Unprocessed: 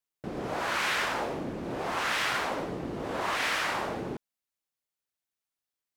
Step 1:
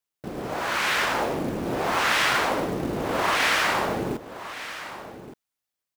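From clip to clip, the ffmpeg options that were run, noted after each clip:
-af "dynaudnorm=f=210:g=9:m=1.78,acrusher=bits=5:mode=log:mix=0:aa=0.000001,aecho=1:1:1169:0.211,volume=1.26"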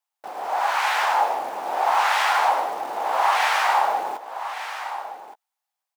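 -filter_complex "[0:a]asplit=2[s0][s1];[s1]alimiter=limit=0.0891:level=0:latency=1,volume=0.75[s2];[s0][s2]amix=inputs=2:normalize=0,highpass=f=810:t=q:w=4.9,asplit=2[s3][s4];[s4]adelay=15,volume=0.251[s5];[s3][s5]amix=inputs=2:normalize=0,volume=0.531"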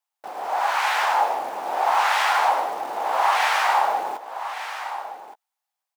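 -af anull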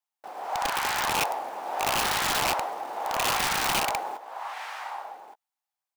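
-af "aeval=exprs='(mod(5.01*val(0)+1,2)-1)/5.01':c=same,volume=0.531"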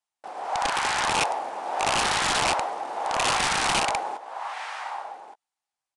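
-af "aresample=22050,aresample=44100,volume=1.33"

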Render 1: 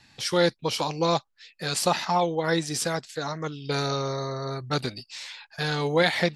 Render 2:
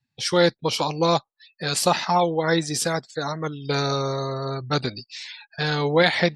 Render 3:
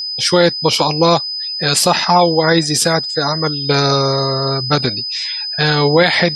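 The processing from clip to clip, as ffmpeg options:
-af "afftdn=nr=32:nf=-44,volume=1.5"
-af "aeval=exprs='val(0)+0.0316*sin(2*PI*5000*n/s)':c=same,alimiter=level_in=3.35:limit=0.891:release=50:level=0:latency=1,volume=0.891"

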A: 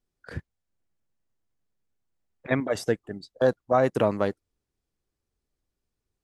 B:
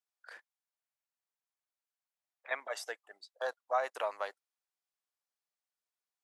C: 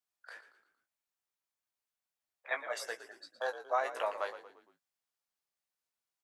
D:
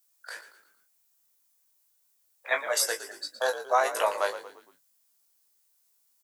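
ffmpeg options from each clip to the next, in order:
-af "highpass=f=690:w=0.5412,highpass=f=690:w=1.3066,volume=0.501"
-filter_complex "[0:a]asplit=2[s0][s1];[s1]adelay=18,volume=0.473[s2];[s0][s2]amix=inputs=2:normalize=0,asplit=5[s3][s4][s5][s6][s7];[s4]adelay=115,afreqshift=-56,volume=0.237[s8];[s5]adelay=230,afreqshift=-112,volume=0.105[s9];[s6]adelay=345,afreqshift=-168,volume=0.0457[s10];[s7]adelay=460,afreqshift=-224,volume=0.0202[s11];[s3][s8][s9][s10][s11]amix=inputs=5:normalize=0"
-filter_complex "[0:a]acrossover=split=3300[s0][s1];[s1]crystalizer=i=3:c=0[s2];[s0][s2]amix=inputs=2:normalize=0,asplit=2[s3][s4];[s4]adelay=20,volume=0.398[s5];[s3][s5]amix=inputs=2:normalize=0,volume=2.51"

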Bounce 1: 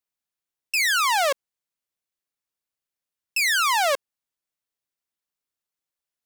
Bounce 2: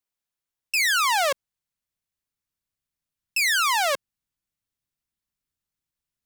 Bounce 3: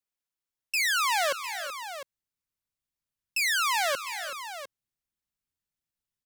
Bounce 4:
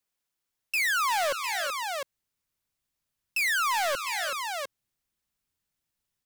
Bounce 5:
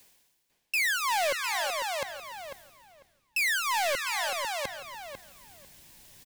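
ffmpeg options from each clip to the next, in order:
-af "asubboost=boost=5.5:cutoff=210"
-af "aecho=1:1:347|377|703:0.141|0.237|0.251,volume=0.596"
-filter_complex "[0:a]asplit=2[s0][s1];[s1]alimiter=level_in=1.78:limit=0.0631:level=0:latency=1:release=456,volume=0.562,volume=1.12[s2];[s0][s2]amix=inputs=2:normalize=0,asoftclip=type=hard:threshold=0.0631"
-filter_complex "[0:a]equalizer=f=1300:w=6:g=-12.5,areverse,acompressor=mode=upward:threshold=0.0316:ratio=2.5,areverse,asplit=2[s0][s1];[s1]adelay=497,lowpass=f=3200:p=1,volume=0.398,asplit=2[s2][s3];[s3]adelay=497,lowpass=f=3200:p=1,volume=0.18,asplit=2[s4][s5];[s5]adelay=497,lowpass=f=3200:p=1,volume=0.18[s6];[s0][s2][s4][s6]amix=inputs=4:normalize=0"

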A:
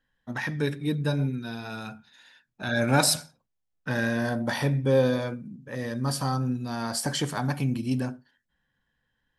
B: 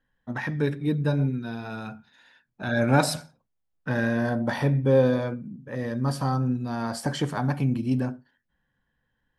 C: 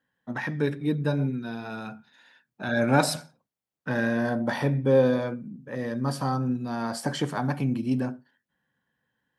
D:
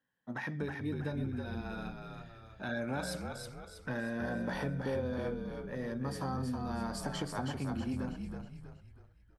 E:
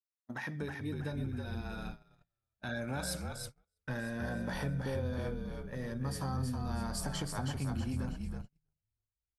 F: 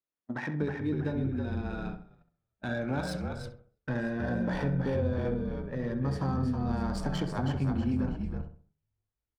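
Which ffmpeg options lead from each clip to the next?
-af "highshelf=f=2800:g=-11.5,volume=1.33"
-af "highpass=140"
-filter_complex "[0:a]acompressor=threshold=0.0501:ratio=6,asplit=2[s0][s1];[s1]asplit=5[s2][s3][s4][s5][s6];[s2]adelay=321,afreqshift=-50,volume=0.562[s7];[s3]adelay=642,afreqshift=-100,volume=0.248[s8];[s4]adelay=963,afreqshift=-150,volume=0.108[s9];[s5]adelay=1284,afreqshift=-200,volume=0.0479[s10];[s6]adelay=1605,afreqshift=-250,volume=0.0211[s11];[s7][s8][s9][s10][s11]amix=inputs=5:normalize=0[s12];[s0][s12]amix=inputs=2:normalize=0,volume=0.447"
-af "aemphasis=mode=production:type=cd,agate=range=0.0112:threshold=0.00794:ratio=16:detection=peak,asubboost=boost=2.5:cutoff=160,volume=0.841"
-filter_complex "[0:a]equalizer=f=310:t=o:w=1.8:g=5.5,adynamicsmooth=sensitivity=7.5:basefreq=2900,asplit=2[s0][s1];[s1]adelay=66,lowpass=f=1600:p=1,volume=0.398,asplit=2[s2][s3];[s3]adelay=66,lowpass=f=1600:p=1,volume=0.38,asplit=2[s4][s5];[s5]adelay=66,lowpass=f=1600:p=1,volume=0.38,asplit=2[s6][s7];[s7]adelay=66,lowpass=f=1600:p=1,volume=0.38[s8];[s0][s2][s4][s6][s8]amix=inputs=5:normalize=0,volume=1.41"

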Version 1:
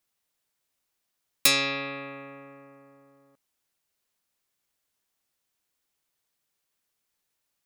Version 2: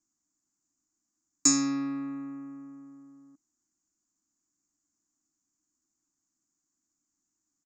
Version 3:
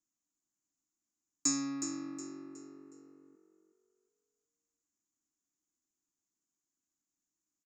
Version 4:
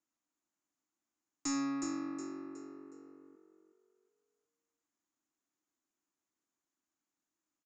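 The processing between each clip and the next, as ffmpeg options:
-af "firequalizer=gain_entry='entry(140,0);entry(310,15);entry(460,-23);entry(650,-8);entry(1200,-3);entry(3200,-27);entry(4600,-6);entry(7000,12);entry(10000,-30)':delay=0.05:min_phase=1,volume=0.841"
-filter_complex "[0:a]asplit=5[s0][s1][s2][s3][s4];[s1]adelay=366,afreqshift=47,volume=0.335[s5];[s2]adelay=732,afreqshift=94,volume=0.114[s6];[s3]adelay=1098,afreqshift=141,volume=0.0389[s7];[s4]adelay=1464,afreqshift=188,volume=0.0132[s8];[s0][s5][s6][s7][s8]amix=inputs=5:normalize=0,volume=0.376"
-filter_complex "[0:a]asplit=2[s0][s1];[s1]highpass=f=720:p=1,volume=5.62,asoftclip=type=tanh:threshold=0.168[s2];[s0][s2]amix=inputs=2:normalize=0,lowpass=f=1100:p=1,volume=0.501,aresample=22050,aresample=44100"

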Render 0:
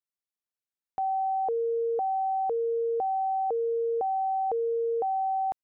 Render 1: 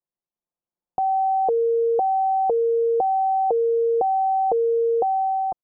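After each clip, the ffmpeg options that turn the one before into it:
-af "lowpass=f=1000:w=0.5412,lowpass=f=1000:w=1.3066,aecho=1:1:5.7:0.46,dynaudnorm=f=290:g=5:m=1.68,volume=1.88"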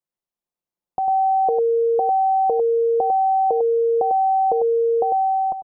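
-filter_complex "[0:a]asplit=2[s0][s1];[s1]adelay=99.13,volume=0.501,highshelf=f=4000:g=-2.23[s2];[s0][s2]amix=inputs=2:normalize=0"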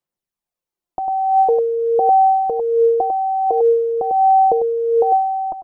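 -af "aphaser=in_gain=1:out_gain=1:delay=3.2:decay=0.44:speed=0.46:type=sinusoidal,volume=1.19"

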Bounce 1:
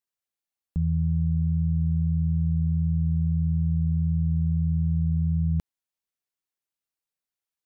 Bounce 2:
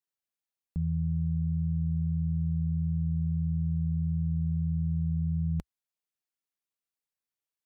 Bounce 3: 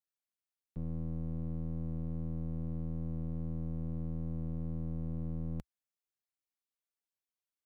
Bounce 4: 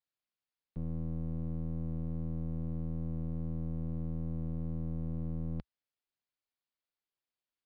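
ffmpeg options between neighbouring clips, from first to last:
-af "equalizer=f=63:t=o:w=0.77:g=-4,volume=0.631"
-af "aeval=exprs='clip(val(0),-1,0.00944)':c=same,aeval=exprs='0.0631*(cos(1*acos(clip(val(0)/0.0631,-1,1)))-cos(1*PI/2))+0.00501*(cos(4*acos(clip(val(0)/0.0631,-1,1)))-cos(4*PI/2))+0.00112*(cos(8*acos(clip(val(0)/0.0631,-1,1)))-cos(8*PI/2))':c=same,volume=0.501"
-af "aresample=11025,aresample=44100,volume=1.12"

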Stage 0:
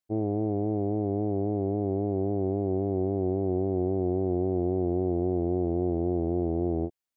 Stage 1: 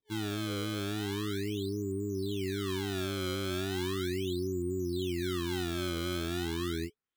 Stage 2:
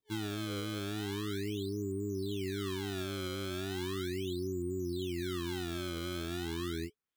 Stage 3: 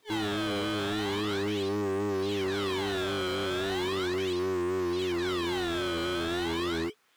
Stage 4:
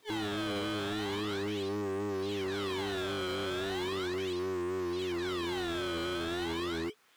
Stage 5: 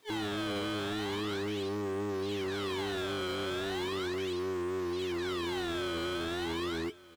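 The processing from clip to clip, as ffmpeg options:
-af "afftfilt=real='re*(1-between(b*sr/4096,430,980))':imag='im*(1-between(b*sr/4096,430,980))':win_size=4096:overlap=0.75,acrusher=samples=27:mix=1:aa=0.000001:lfo=1:lforange=43.2:lforate=0.37,superequalizer=8b=0.398:9b=0.562:13b=2.24,volume=0.501"
-af "alimiter=level_in=1.68:limit=0.0631:level=0:latency=1:release=479,volume=0.596"
-filter_complex "[0:a]asplit=2[s0][s1];[s1]highpass=f=720:p=1,volume=39.8,asoftclip=type=tanh:threshold=0.0398[s2];[s0][s2]amix=inputs=2:normalize=0,lowpass=f=2800:p=1,volume=0.501,volume=1.5"
-af "alimiter=level_in=2.37:limit=0.0631:level=0:latency=1:release=166,volume=0.422,volume=1.26"
-af "aecho=1:1:1165:0.0891"

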